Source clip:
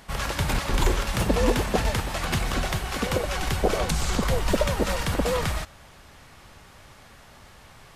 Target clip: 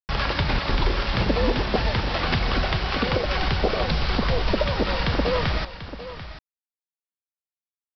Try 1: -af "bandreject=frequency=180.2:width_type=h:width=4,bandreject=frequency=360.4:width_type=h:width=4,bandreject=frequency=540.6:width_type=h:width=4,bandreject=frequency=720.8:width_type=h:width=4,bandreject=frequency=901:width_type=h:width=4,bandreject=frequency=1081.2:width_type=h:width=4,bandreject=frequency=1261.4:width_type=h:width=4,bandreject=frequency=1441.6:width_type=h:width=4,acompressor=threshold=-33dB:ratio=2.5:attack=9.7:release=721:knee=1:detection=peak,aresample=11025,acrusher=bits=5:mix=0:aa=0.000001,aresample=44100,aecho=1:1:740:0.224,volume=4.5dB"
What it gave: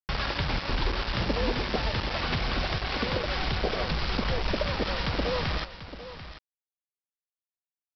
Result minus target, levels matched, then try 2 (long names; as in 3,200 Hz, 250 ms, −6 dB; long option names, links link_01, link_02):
downward compressor: peak gain reduction +6.5 dB
-af "bandreject=frequency=180.2:width_type=h:width=4,bandreject=frequency=360.4:width_type=h:width=4,bandreject=frequency=540.6:width_type=h:width=4,bandreject=frequency=720.8:width_type=h:width=4,bandreject=frequency=901:width_type=h:width=4,bandreject=frequency=1081.2:width_type=h:width=4,bandreject=frequency=1261.4:width_type=h:width=4,bandreject=frequency=1441.6:width_type=h:width=4,acompressor=threshold=-22.5dB:ratio=2.5:attack=9.7:release=721:knee=1:detection=peak,aresample=11025,acrusher=bits=5:mix=0:aa=0.000001,aresample=44100,aecho=1:1:740:0.224,volume=4.5dB"